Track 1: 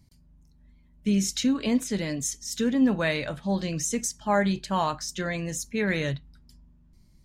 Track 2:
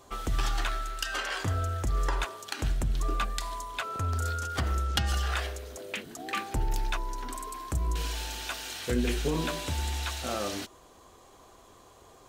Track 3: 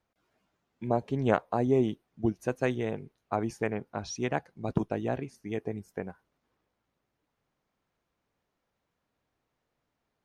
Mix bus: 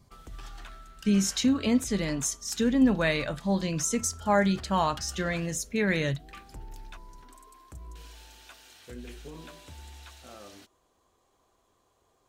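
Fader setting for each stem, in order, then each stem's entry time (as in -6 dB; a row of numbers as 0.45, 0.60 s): 0.0 dB, -15.0 dB, off; 0.00 s, 0.00 s, off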